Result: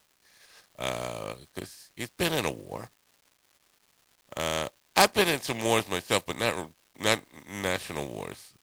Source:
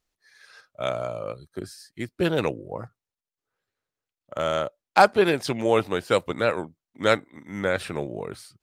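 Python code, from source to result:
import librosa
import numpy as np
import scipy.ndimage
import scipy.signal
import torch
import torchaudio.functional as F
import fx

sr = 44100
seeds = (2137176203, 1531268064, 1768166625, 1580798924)

y = fx.spec_flatten(x, sr, power=0.55)
y = fx.notch(y, sr, hz=1400.0, q=5.9)
y = fx.dmg_crackle(y, sr, seeds[0], per_s=490.0, level_db=-46.0)
y = y * 10.0 ** (-4.0 / 20.0)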